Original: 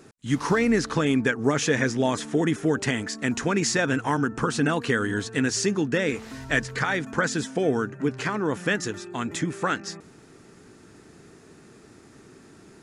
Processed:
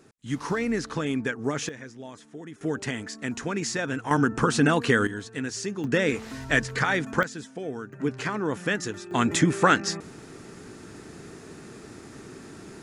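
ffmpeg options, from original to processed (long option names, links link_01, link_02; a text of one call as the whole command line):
ffmpeg -i in.wav -af "asetnsamples=nb_out_samples=441:pad=0,asendcmd='1.69 volume volume -18dB;2.61 volume volume -5.5dB;4.11 volume volume 2.5dB;5.07 volume volume -7.5dB;5.84 volume volume 1dB;7.23 volume volume -10.5dB;7.93 volume volume -2dB;9.11 volume volume 6.5dB',volume=-5.5dB" out.wav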